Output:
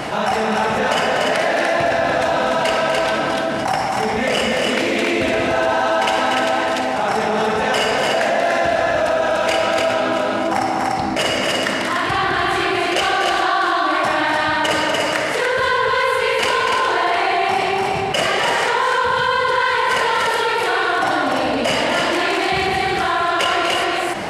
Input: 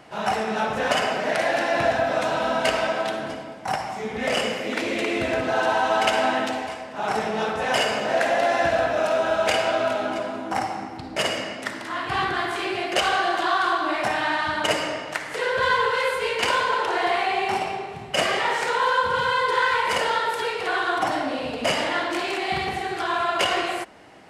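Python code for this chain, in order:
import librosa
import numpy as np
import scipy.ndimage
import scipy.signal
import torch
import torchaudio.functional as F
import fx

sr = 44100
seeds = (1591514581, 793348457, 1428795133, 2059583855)

y = fx.echo_multitap(x, sr, ms=(244, 293), db=(-10.0, -4.0))
y = fx.env_flatten(y, sr, amount_pct=70)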